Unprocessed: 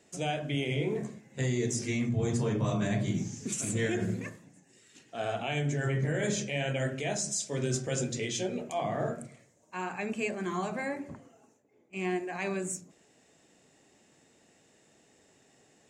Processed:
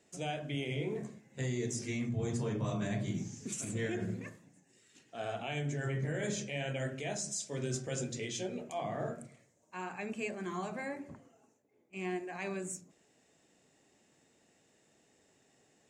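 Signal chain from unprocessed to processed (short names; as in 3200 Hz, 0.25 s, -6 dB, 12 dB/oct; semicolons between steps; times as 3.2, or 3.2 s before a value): 3.64–4.27 high shelf 5100 Hz -6 dB; gain -5.5 dB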